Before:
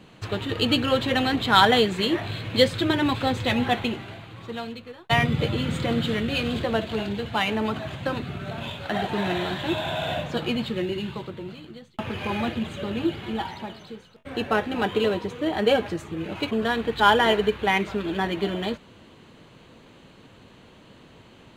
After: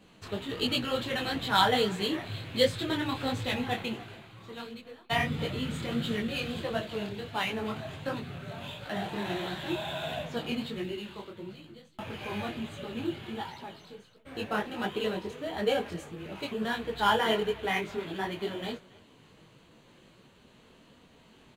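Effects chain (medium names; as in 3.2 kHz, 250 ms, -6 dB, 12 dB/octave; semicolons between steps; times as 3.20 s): treble shelf 6.6 kHz +7.5 dB; speakerphone echo 280 ms, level -20 dB; flange 0.19 Hz, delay 4.1 ms, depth 3.7 ms, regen -59%; 10.96–11.36 s: peaking EQ 140 Hz -12.5 dB 0.9 oct; detune thickener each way 51 cents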